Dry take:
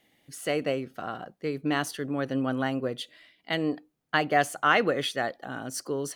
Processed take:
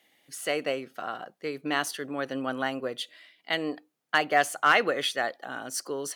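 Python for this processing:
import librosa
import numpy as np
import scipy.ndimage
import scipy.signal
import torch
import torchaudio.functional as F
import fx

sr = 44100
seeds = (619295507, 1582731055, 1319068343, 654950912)

y = fx.highpass(x, sr, hz=600.0, slope=6)
y = fx.clip_asym(y, sr, top_db=-14.5, bottom_db=-11.0)
y = y * 10.0 ** (2.5 / 20.0)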